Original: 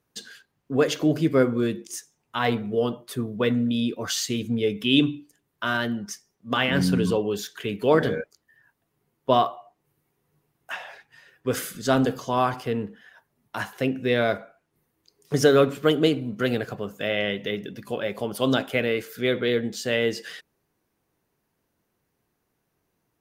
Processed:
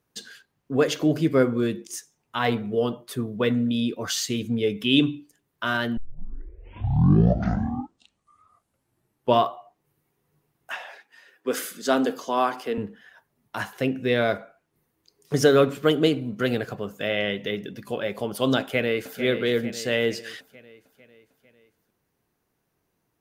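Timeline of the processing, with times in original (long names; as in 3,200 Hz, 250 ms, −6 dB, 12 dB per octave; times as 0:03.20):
0:05.97: tape start 3.52 s
0:10.73–0:12.78: high-pass filter 230 Hz 24 dB per octave
0:18.60–0:19.20: delay throw 450 ms, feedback 55%, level −9.5 dB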